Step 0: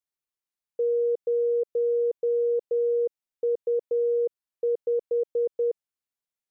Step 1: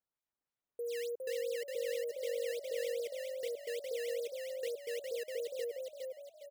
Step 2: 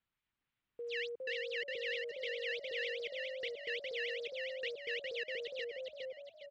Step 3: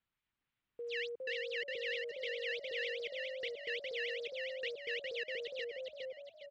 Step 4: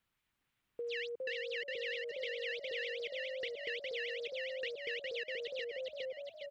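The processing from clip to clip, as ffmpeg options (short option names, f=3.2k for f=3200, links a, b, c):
-filter_complex "[0:a]alimiter=level_in=3dB:limit=-24dB:level=0:latency=1:release=345,volume=-3dB,acrusher=samples=11:mix=1:aa=0.000001:lfo=1:lforange=17.6:lforate=3.3,asplit=2[a][b];[b]asplit=5[c][d][e][f][g];[c]adelay=409,afreqshift=47,volume=-3.5dB[h];[d]adelay=818,afreqshift=94,volume=-11.7dB[i];[e]adelay=1227,afreqshift=141,volume=-19.9dB[j];[f]adelay=1636,afreqshift=188,volume=-28dB[k];[g]adelay=2045,afreqshift=235,volume=-36.2dB[l];[h][i][j][k][l]amix=inputs=5:normalize=0[m];[a][m]amix=inputs=2:normalize=0,volume=-8dB"
-filter_complex "[0:a]lowpass=f=3.2k:w=0.5412,lowpass=f=3.2k:w=1.3066,equalizer=f=590:w=0.63:g=-14,acrossover=split=680[a][b];[a]alimiter=level_in=31.5dB:limit=-24dB:level=0:latency=1:release=28,volume=-31.5dB[c];[c][b]amix=inputs=2:normalize=0,volume=13dB"
-af anull
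-af "acompressor=threshold=-46dB:ratio=2.5,volume=6dB"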